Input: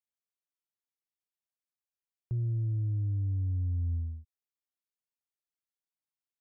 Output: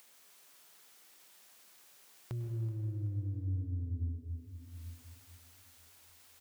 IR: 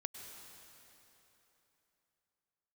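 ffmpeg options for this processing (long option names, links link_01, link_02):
-filter_complex "[0:a]highpass=frequency=320:poles=1,alimiter=level_in=15.5dB:limit=-24dB:level=0:latency=1,volume=-15.5dB,acompressor=mode=upward:threshold=-48dB:ratio=2.5,aecho=1:1:377|754|1131|1508:0.141|0.0622|0.0273|0.012[link_01];[1:a]atrim=start_sample=2205[link_02];[link_01][link_02]afir=irnorm=-1:irlink=0,volume=10.5dB"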